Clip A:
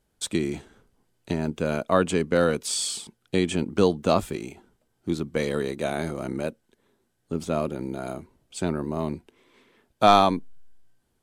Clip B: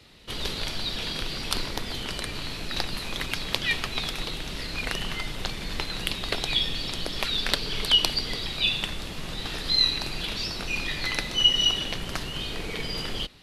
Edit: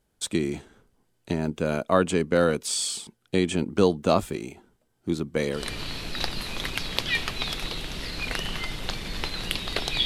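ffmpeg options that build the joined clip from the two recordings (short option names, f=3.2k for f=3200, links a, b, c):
-filter_complex "[0:a]apad=whole_dur=10.05,atrim=end=10.05,atrim=end=5.66,asetpts=PTS-STARTPTS[a];[1:a]atrim=start=2.06:end=6.61,asetpts=PTS-STARTPTS[b];[a][b]acrossfade=d=0.16:c1=tri:c2=tri"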